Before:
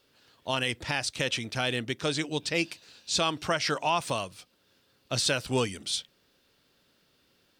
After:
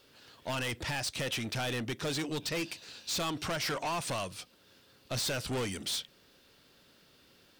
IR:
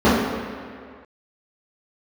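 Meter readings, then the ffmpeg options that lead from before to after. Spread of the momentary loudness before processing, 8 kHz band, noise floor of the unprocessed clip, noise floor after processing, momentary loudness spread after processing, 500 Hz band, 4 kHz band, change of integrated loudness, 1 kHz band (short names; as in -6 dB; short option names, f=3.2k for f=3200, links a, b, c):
6 LU, -3.5 dB, -68 dBFS, -63 dBFS, 8 LU, -5.5 dB, -5.0 dB, -5.0 dB, -6.0 dB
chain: -filter_complex "[0:a]asplit=2[a][b];[b]acompressor=threshold=-34dB:ratio=6,volume=-2dB[c];[a][c]amix=inputs=2:normalize=0,asoftclip=type=tanh:threshold=-30.5dB"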